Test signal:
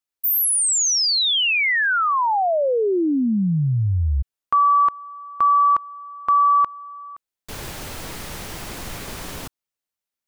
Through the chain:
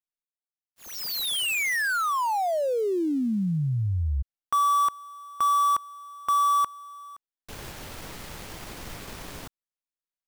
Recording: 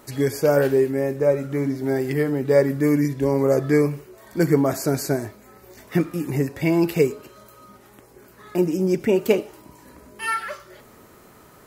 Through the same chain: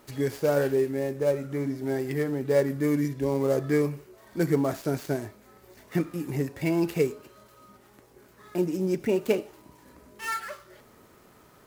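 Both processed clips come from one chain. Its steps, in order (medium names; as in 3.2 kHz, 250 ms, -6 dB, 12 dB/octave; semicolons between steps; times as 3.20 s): dead-time distortion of 0.069 ms; trim -6 dB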